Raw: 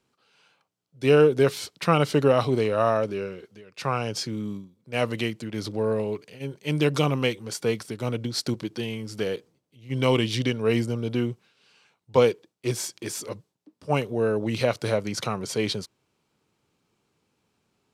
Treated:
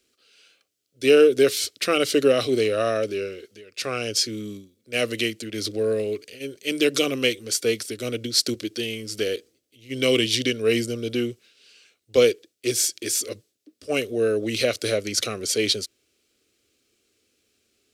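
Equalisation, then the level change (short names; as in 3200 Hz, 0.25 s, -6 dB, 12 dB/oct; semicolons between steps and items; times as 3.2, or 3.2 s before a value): high shelf 2300 Hz +8 dB; fixed phaser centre 380 Hz, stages 4; +3.0 dB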